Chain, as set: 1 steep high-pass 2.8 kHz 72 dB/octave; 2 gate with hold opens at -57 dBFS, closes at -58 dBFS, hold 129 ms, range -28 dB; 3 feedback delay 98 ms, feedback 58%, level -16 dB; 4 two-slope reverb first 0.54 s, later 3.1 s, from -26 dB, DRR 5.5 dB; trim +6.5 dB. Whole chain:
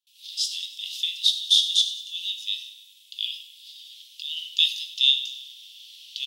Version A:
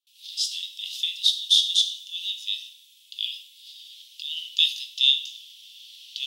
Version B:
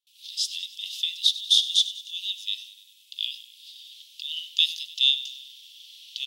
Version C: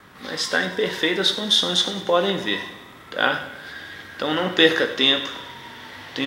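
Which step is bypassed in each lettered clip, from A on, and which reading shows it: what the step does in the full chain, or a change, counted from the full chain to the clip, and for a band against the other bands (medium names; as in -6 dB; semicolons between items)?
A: 3, momentary loudness spread change -3 LU; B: 4, momentary loudness spread change -2 LU; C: 1, momentary loudness spread change -5 LU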